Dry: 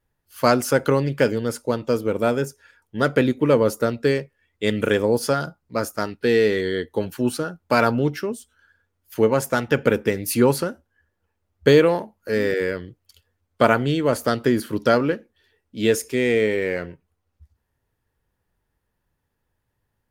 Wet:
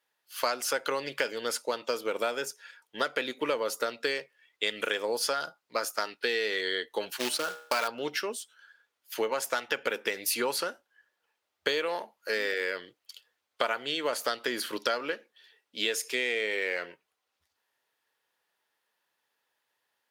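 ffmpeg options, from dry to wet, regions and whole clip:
ffmpeg -i in.wav -filter_complex "[0:a]asettb=1/sr,asplit=3[link_01][link_02][link_03];[link_01]atrim=end=7.194[link_04];[link_02]atrim=start=7.19:end=7.88,asetpts=PTS-STARTPTS,afade=type=in:duration=0.004:curve=qsin,afade=type=out:start_time=0.686:duration=0.004:curve=qsin,agate=range=-33dB:threshold=-31dB:ratio=3:release=100:detection=peak,bandreject=frequency=68.15:width_type=h:width=4,bandreject=frequency=136.3:width_type=h:width=4,bandreject=frequency=204.45:width_type=h:width=4,bandreject=frequency=272.6:width_type=h:width=4,bandreject=frequency=340.75:width_type=h:width=4,bandreject=frequency=408.9:width_type=h:width=4,bandreject=frequency=477.05:width_type=h:width=4,bandreject=frequency=545.2:width_type=h:width=4,bandreject=frequency=613.35:width_type=h:width=4,bandreject=frequency=681.5:width_type=h:width=4,bandreject=frequency=749.65:width_type=h:width=4,bandreject=frequency=817.8:width_type=h:width=4,bandreject=frequency=885.95:width_type=h:width=4,bandreject=frequency=954.1:width_type=h:width=4,bandreject=frequency=1022.25:width_type=h:width=4,bandreject=frequency=1090.4:width_type=h:width=4,bandreject=frequency=1158.55:width_type=h:width=4,bandreject=frequency=1226.7:width_type=h:width=4,bandreject=frequency=1294.85:width_type=h:width=4,bandreject=frequency=1363:width_type=h:width=4,bandreject=frequency=1431.15:width_type=h:width=4,bandreject=frequency=1499.3:width_type=h:width=4,bandreject=frequency=1567.45:width_type=h:width=4,bandreject=frequency=1635.6:width_type=h:width=4,bandreject=frequency=1703.75:width_type=h:width=4,bandreject=frequency=1771.9:width_type=h:width=4,bandreject=frequency=1840.05:width_type=h:width=4,bandreject=frequency=1908.2:width_type=h:width=4,bandreject=frequency=1976.35:width_type=h:width=4,bandreject=frequency=2044.5:width_type=h:width=4,bandreject=frequency=2112.65:width_type=h:width=4,bandreject=frequency=2180.8:width_type=h:width=4,bandreject=frequency=2248.95:width_type=h:width=4,bandreject=frequency=2317.1:width_type=h:width=4,bandreject=frequency=2385.25:width_type=h:width=4,bandreject=frequency=2453.4:width_type=h:width=4,bandreject=frequency=2521.55:width_type=h:width=4,bandreject=frequency=2589.7:width_type=h:width=4,bandreject=frequency=2657.85:width_type=h:width=4,acrusher=bits=3:mode=log:mix=0:aa=0.000001[link_05];[link_03]atrim=start=7.876[link_06];[link_04][link_05]acrossfade=duration=0.004:curve1=hsin:curve2=qsin[link_07];[link_07][link_06]acrossfade=duration=0.004:curve1=qsin:curve2=hsin,highpass=600,equalizer=frequency=3600:width=0.81:gain=7.5,acompressor=threshold=-26dB:ratio=6" out.wav

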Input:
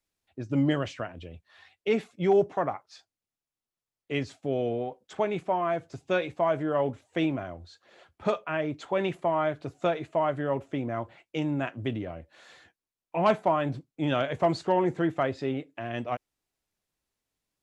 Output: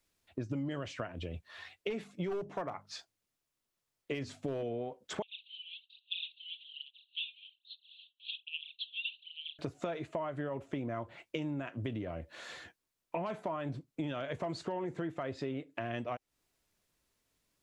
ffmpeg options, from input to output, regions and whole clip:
ffmpeg -i in.wav -filter_complex "[0:a]asettb=1/sr,asplit=3[link_01][link_02][link_03];[link_01]atrim=end=1.904[link_04];[link_02]atrim=start=1.9:end=4.63,asetpts=PTS-STARTPTS,afade=type=in:duration=0.004:curve=qsin,afade=type=out:start_time=2.726:duration=0.004:curve=qsin,aeval=exprs='clip(val(0),-1,0.0794)':channel_layout=same,bandreject=frequency=50:width_type=h:width=6,bandreject=frequency=100:width_type=h:width=6,bandreject=frequency=150:width_type=h:width=6,bandreject=frequency=200:width_type=h:width=6,bandreject=frequency=250:width_type=h:width=6[link_05];[link_03]atrim=start=4.626[link_06];[link_04][link_05]acrossfade=duration=0.004:curve1=hsin:curve2=qsin[link_07];[link_07][link_06]acrossfade=duration=0.004:curve1=qsin:curve2=hsin,asettb=1/sr,asplit=3[link_08][link_09][link_10];[link_08]atrim=end=5.224[link_11];[link_09]atrim=start=5.22:end=9.59,asetpts=PTS-STARTPTS,afade=type=in:duration=0.004:curve=qsin,afade=type=out:start_time=4.366:duration=0.004:curve=qsin,aphaser=in_gain=1:out_gain=1:delay=3.7:decay=0.73:speed=1.2:type=sinusoidal,asuperpass=centerf=3300:order=12:qfactor=2.4[link_12];[link_10]atrim=start=9.586[link_13];[link_11][link_12]acrossfade=duration=0.004:curve1=hsin:curve2=qsin[link_14];[link_14][link_13]acrossfade=duration=0.004:curve1=qsin:curve2=hsin,bandreject=frequency=790:width=12,alimiter=limit=-20.5dB:level=0:latency=1:release=85,acompressor=threshold=-41dB:ratio=6,volume=6dB" out.wav

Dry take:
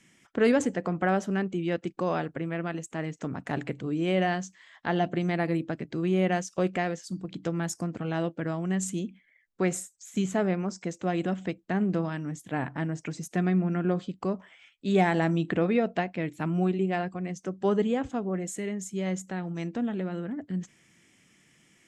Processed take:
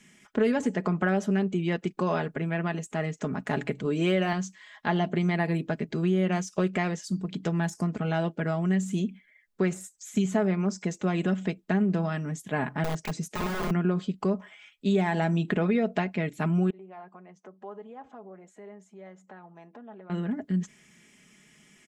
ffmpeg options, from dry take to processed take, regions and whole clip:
ffmpeg -i in.wav -filter_complex "[0:a]asettb=1/sr,asplit=3[link_01][link_02][link_03];[link_01]atrim=end=3.854[link_04];[link_02]atrim=start=3.85:end=4.33,asetpts=PTS-STARTPTS,afade=type=in:duration=0.004:curve=qsin,afade=type=out:start_time=0.476:duration=0.004:curve=qsin,highpass=frequency=250:poles=1,acontrast=33[link_05];[link_03]atrim=start=4.326[link_06];[link_04][link_05]acrossfade=duration=0.004:curve1=hsin:curve2=qsin[link_07];[link_07][link_06]acrossfade=duration=0.004:curve1=qsin:curve2=hsin,asettb=1/sr,asplit=3[link_08][link_09][link_10];[link_08]atrim=end=12.844[link_11];[link_09]atrim=start=12.84:end=13.71,asetpts=PTS-STARTPTS,afade=type=in:duration=0.004:curve=qsin,afade=type=out:start_time=0.866:duration=0.004:curve=qsin,highshelf=frequency=8400:gain=-4.5,aeval=exprs='(mod(21.1*val(0)+1,2)-1)/21.1':channel_layout=same[link_12];[link_10]atrim=start=13.706[link_13];[link_11][link_12]acrossfade=duration=0.004:curve1=hsin:curve2=qsin[link_14];[link_14][link_13]acrossfade=duration=0.004:curve1=qsin:curve2=hsin,asettb=1/sr,asplit=3[link_15][link_16][link_17];[link_15]atrim=end=16.704[link_18];[link_16]atrim=start=16.7:end=20.1,asetpts=PTS-STARTPTS,afade=type=in:duration=0.004:curve=qsin,afade=type=out:start_time=3.396:duration=0.004:curve=qsin,acompressor=threshold=-38dB:ratio=4:attack=3.2:release=140:knee=1:detection=peak,bandpass=frequency=830:width_type=q:width=1.7[link_19];[link_17]atrim=start=20.096[link_20];[link_18][link_19]acrossfade=duration=0.004:curve1=hsin:curve2=qsin[link_21];[link_21][link_20]acrossfade=duration=0.004:curve1=qsin:curve2=hsin,deesser=0.9,aecho=1:1:4.8:0.59,acompressor=threshold=-24dB:ratio=4,volume=2.5dB" out.wav

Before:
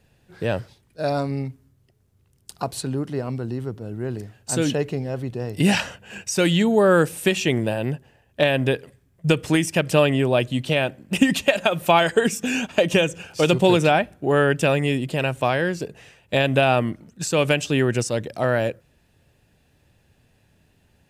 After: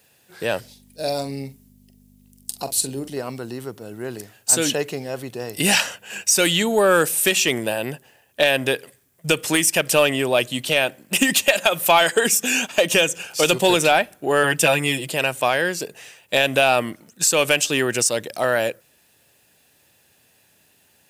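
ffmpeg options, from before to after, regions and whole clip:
ffmpeg -i in.wav -filter_complex "[0:a]asettb=1/sr,asplit=3[link_01][link_02][link_03];[link_01]atrim=end=0.604[link_04];[link_02]atrim=start=0.6:end=3.17,asetpts=PTS-STARTPTS,afade=type=in:duration=0.004:curve=qsin,afade=type=out:start_time=2.566:duration=0.004:curve=qsin,equalizer=frequency=1300:width_type=o:width=1.1:gain=-13.5,aeval=exprs='val(0)+0.00891*(sin(2*PI*50*n/s)+sin(2*PI*2*50*n/s)/2+sin(2*PI*3*50*n/s)/3+sin(2*PI*4*50*n/s)/4+sin(2*PI*5*50*n/s)/5)':channel_layout=same,asplit=2[link_05][link_06];[link_06]adelay=44,volume=-11dB[link_07];[link_05][link_07]amix=inputs=2:normalize=0,atrim=end_sample=113337[link_08];[link_03]atrim=start=3.166[link_09];[link_04][link_08]acrossfade=duration=0.004:curve1=hsin:curve2=qsin[link_10];[link_10][link_09]acrossfade=duration=0.004:curve1=qsin:curve2=hsin,asettb=1/sr,asplit=3[link_11][link_12][link_13];[link_11]atrim=end=14.434[link_14];[link_12]atrim=start=14.43:end=15.1,asetpts=PTS-STARTPTS,afade=type=in:duration=0.004:curve=qsin,afade=type=out:start_time=0.666:duration=0.004:curve=qsin,highpass=48,aecho=1:1:6.1:0.62,atrim=end_sample=29547[link_15];[link_13]atrim=start=15.096[link_16];[link_14][link_15]acrossfade=duration=0.004:curve1=hsin:curve2=qsin[link_17];[link_17][link_16]acrossfade=duration=0.004:curve1=qsin:curve2=hsin,highpass=frequency=530:poles=1,aemphasis=mode=production:type=50kf,acontrast=63,volume=-2.5dB" out.wav

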